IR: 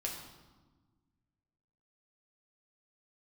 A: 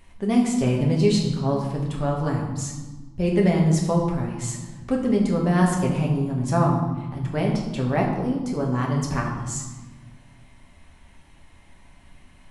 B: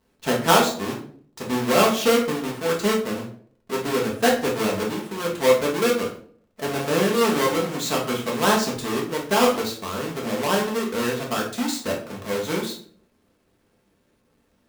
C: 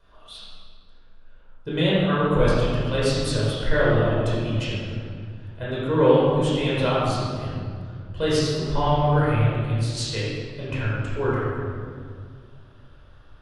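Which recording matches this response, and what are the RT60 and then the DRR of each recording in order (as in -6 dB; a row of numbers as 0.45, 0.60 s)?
A; 1.3, 0.50, 2.1 s; -2.0, -2.5, -8.5 dB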